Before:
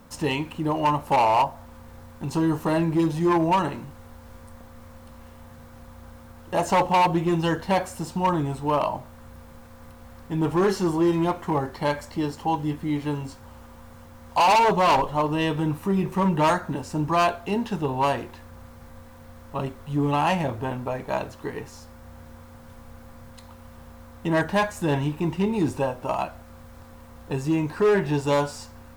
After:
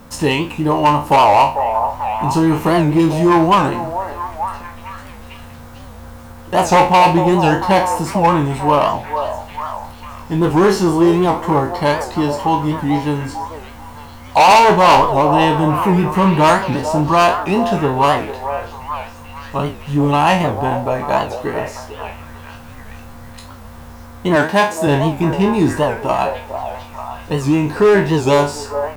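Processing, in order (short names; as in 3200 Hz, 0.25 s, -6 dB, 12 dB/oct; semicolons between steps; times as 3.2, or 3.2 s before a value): spectral trails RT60 0.33 s; 24.36–24.87 HPF 180 Hz 12 dB/oct; on a send: delay with a stepping band-pass 0.445 s, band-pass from 630 Hz, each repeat 0.7 oct, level -6 dB; on the sum: record warp 78 rpm, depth 160 cents; gain +8.5 dB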